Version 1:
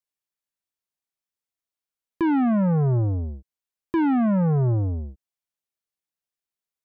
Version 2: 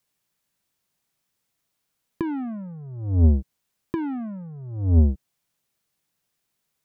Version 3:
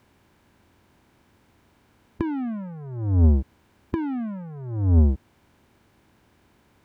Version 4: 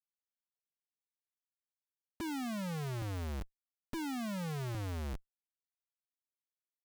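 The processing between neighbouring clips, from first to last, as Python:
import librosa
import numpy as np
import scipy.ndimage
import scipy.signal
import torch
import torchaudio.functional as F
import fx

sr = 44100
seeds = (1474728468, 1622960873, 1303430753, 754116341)

y1 = fx.peak_eq(x, sr, hz=150.0, db=8.0, octaves=1.3)
y1 = fx.over_compress(y1, sr, threshold_db=-25.0, ratio=-0.5)
y1 = y1 * librosa.db_to_amplitude(3.5)
y2 = fx.bin_compress(y1, sr, power=0.6)
y2 = y2 * librosa.db_to_amplitude(-1.0)
y3 = fx.highpass(y2, sr, hz=340.0, slope=6)
y3 = fx.low_shelf(y3, sr, hz=490.0, db=-5.0)
y3 = fx.schmitt(y3, sr, flips_db=-43.5)
y3 = y3 * librosa.db_to_amplitude(1.5)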